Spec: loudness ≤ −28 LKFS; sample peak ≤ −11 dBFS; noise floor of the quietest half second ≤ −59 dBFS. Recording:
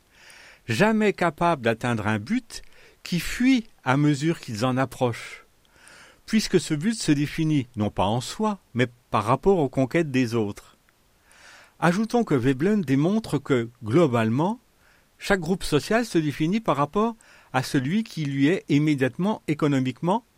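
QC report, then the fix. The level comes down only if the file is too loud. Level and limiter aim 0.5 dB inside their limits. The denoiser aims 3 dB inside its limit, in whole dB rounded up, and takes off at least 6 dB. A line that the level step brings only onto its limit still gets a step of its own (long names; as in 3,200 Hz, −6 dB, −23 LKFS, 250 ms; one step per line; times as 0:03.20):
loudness −24.0 LKFS: out of spec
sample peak −5.0 dBFS: out of spec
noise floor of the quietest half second −61 dBFS: in spec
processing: level −4.5 dB
brickwall limiter −11.5 dBFS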